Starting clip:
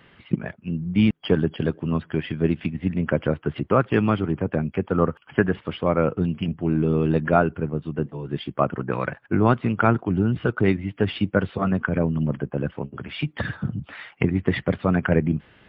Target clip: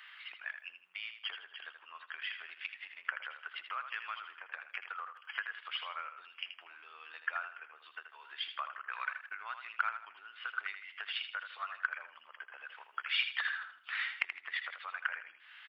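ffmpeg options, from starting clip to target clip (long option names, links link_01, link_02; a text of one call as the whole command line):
ffmpeg -i in.wav -filter_complex "[0:a]asettb=1/sr,asplit=3[link_01][link_02][link_03];[link_01]atrim=end=1.224[link_04];[link_02]atrim=start=1.22:end=2.22,asetpts=PTS-STARTPTS,afade=type=in:duration=0.004:curve=qsin,afade=type=out:start_time=0.996:duration=0.004:curve=qsin,lowpass=frequency=2200:poles=1[link_05];[link_03]atrim=start=2.216[link_06];[link_04][link_05]acrossfade=duration=0.004:curve1=hsin:curve2=qsin[link_07];[link_07][link_06]acrossfade=duration=0.004:curve1=qsin:curve2=hsin,acompressor=threshold=-28dB:ratio=10,highpass=frequency=1300:width=0.5412,highpass=frequency=1300:width=1.3066,aecho=1:1:80|160|240|320:0.376|0.12|0.0385|0.0123,volume=3.5dB" out.wav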